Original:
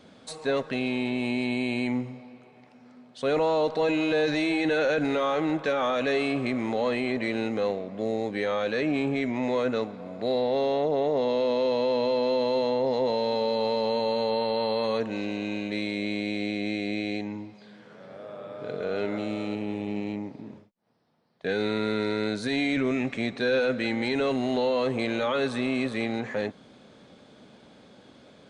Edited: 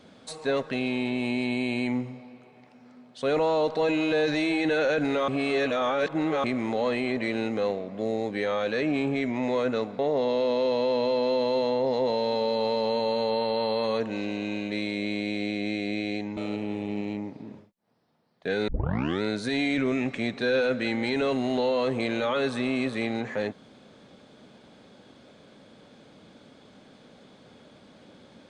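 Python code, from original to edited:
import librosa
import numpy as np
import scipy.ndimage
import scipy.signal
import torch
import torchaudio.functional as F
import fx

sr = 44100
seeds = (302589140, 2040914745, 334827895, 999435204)

y = fx.edit(x, sr, fx.reverse_span(start_s=5.28, length_s=1.16),
    fx.cut(start_s=9.99, length_s=1.0),
    fx.cut(start_s=17.37, length_s=1.99),
    fx.tape_start(start_s=21.67, length_s=0.54), tone=tone)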